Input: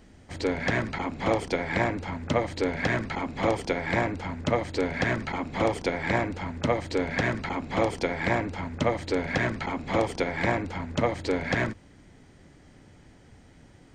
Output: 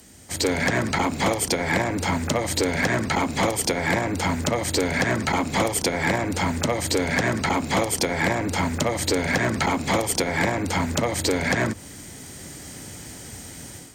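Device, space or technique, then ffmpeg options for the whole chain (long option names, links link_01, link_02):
FM broadcast chain: -filter_complex "[0:a]highpass=60,dynaudnorm=framelen=320:gausssize=3:maxgain=10.5dB,acrossover=split=150|1600[link_01][link_02][link_03];[link_01]acompressor=threshold=-29dB:ratio=4[link_04];[link_02]acompressor=threshold=-19dB:ratio=4[link_05];[link_03]acompressor=threshold=-34dB:ratio=4[link_06];[link_04][link_05][link_06]amix=inputs=3:normalize=0,aemphasis=mode=production:type=50fm,alimiter=limit=-13.5dB:level=0:latency=1:release=246,asoftclip=type=hard:threshold=-16dB,lowpass=frequency=15000:width=0.5412,lowpass=frequency=15000:width=1.3066,aemphasis=mode=production:type=50fm,volume=2.5dB"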